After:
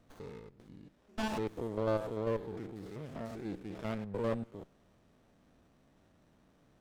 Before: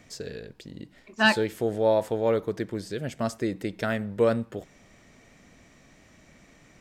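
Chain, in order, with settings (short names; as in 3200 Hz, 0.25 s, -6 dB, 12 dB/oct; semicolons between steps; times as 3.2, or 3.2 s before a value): stepped spectrum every 0.1 s; running maximum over 17 samples; gain -8.5 dB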